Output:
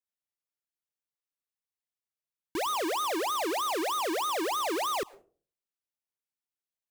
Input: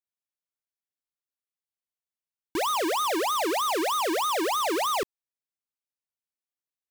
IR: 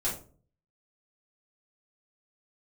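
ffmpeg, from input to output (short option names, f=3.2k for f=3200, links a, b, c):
-filter_complex "[0:a]asplit=2[a][b];[1:a]atrim=start_sample=2205,asetrate=48510,aresample=44100,adelay=100[c];[b][c]afir=irnorm=-1:irlink=0,volume=-28.5dB[d];[a][d]amix=inputs=2:normalize=0,volume=-4dB"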